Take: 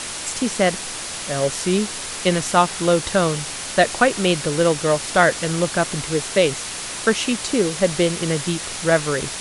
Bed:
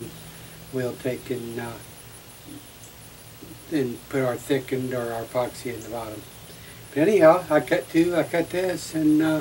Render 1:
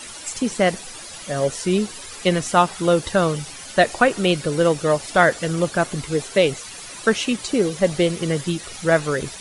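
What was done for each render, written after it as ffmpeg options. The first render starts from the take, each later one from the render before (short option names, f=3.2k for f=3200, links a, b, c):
-af "afftdn=nr=12:nf=-30"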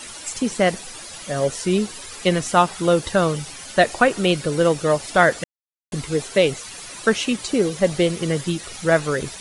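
-filter_complex "[0:a]asplit=3[a][b][c];[a]atrim=end=5.44,asetpts=PTS-STARTPTS,afade=t=out:st=5.436:d=0.004:c=hsin[d];[b]atrim=start=5.44:end=5.92,asetpts=PTS-STARTPTS,volume=0[e];[c]atrim=start=5.92,asetpts=PTS-STARTPTS,afade=t=in:d=0.004:c=hsin[f];[d][e][f]concat=n=3:v=0:a=1"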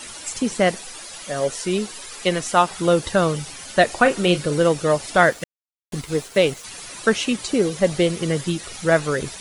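-filter_complex "[0:a]asettb=1/sr,asplit=3[a][b][c];[a]atrim=end=0.714[d];[b]atrim=start=0.71:end=2.71,asetpts=PTS-STARTPTS,afade=t=in:d=0.004:c=qsin,afade=t=out:st=1.996:d=0.004:c=qsin,equalizer=f=80:w=0.39:g=-7.5[e];[c]atrim=start=2.706[f];[d][e]acrossfade=d=0.004:c1=hsin:c2=qsin[g];[g][f]acrossfade=d=0.004:c1=qsin:c2=hsin,asettb=1/sr,asplit=3[h][i][j];[h]atrim=end=4.024[k];[i]atrim=start=4.02:end=4.59,asetpts=PTS-STARTPTS,afade=t=in:d=0.004:c=qsin,afade=t=out:st=0.566:d=0.004:c=qsin,asplit=2[l][m];[m]adelay=34,volume=-10.5dB[n];[l][n]amix=inputs=2:normalize=0,atrim=end_sample=25137[o];[j]atrim=start=4.586[p];[k][o]acrossfade=d=0.004:c1=hsin:c2=qsin[q];[q][p]acrossfade=d=0.004:c1=qsin:c2=hsin,asettb=1/sr,asplit=3[r][s][t];[r]atrim=end=5.264[u];[s]atrim=start=5.26:end=6.64,asetpts=PTS-STARTPTS,afade=t=in:d=0.004:c=qsin,afade=t=out:st=1.376:d=0.004:c=qsin,aeval=exprs='sgn(val(0))*max(abs(val(0))-0.0106,0)':c=same[v];[t]atrim=start=6.636[w];[u][v]acrossfade=d=0.004:c1=hsin:c2=qsin[x];[x][w]acrossfade=d=0.004:c1=qsin:c2=hsin"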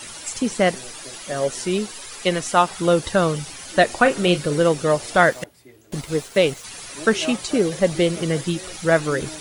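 -filter_complex "[1:a]volume=-16.5dB[a];[0:a][a]amix=inputs=2:normalize=0"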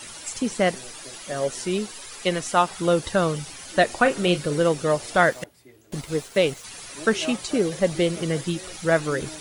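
-af "volume=-3dB"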